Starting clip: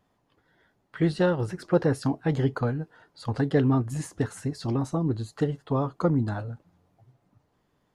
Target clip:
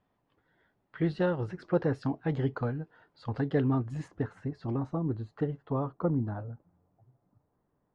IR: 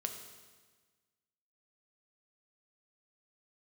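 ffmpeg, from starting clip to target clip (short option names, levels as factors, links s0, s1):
-af "asetnsamples=n=441:p=0,asendcmd='4.08 lowpass f 2000;5.92 lowpass f 1200',lowpass=3400,volume=0.562"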